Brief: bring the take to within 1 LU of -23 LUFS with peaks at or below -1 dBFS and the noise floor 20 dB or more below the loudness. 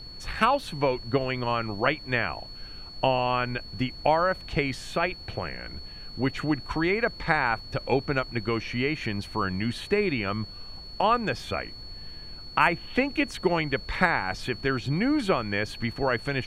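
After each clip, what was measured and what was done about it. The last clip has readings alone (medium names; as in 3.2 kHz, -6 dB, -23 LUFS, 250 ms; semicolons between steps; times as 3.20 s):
steady tone 4.4 kHz; tone level -42 dBFS; noise floor -43 dBFS; noise floor target -47 dBFS; loudness -27.0 LUFS; peak level -5.5 dBFS; loudness target -23.0 LUFS
-> band-stop 4.4 kHz, Q 30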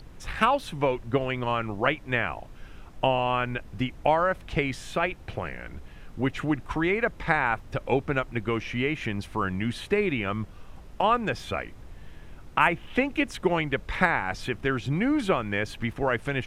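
steady tone not found; noise floor -46 dBFS; noise floor target -47 dBFS
-> noise print and reduce 6 dB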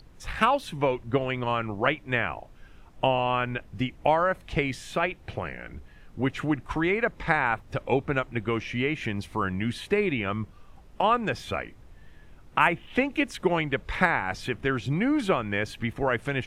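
noise floor -51 dBFS; loudness -27.0 LUFS; peak level -5.5 dBFS; loudness target -23.0 LUFS
-> trim +4 dB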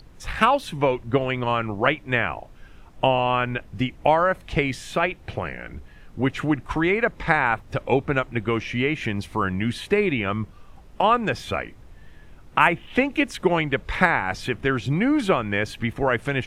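loudness -23.0 LUFS; peak level -1.5 dBFS; noise floor -47 dBFS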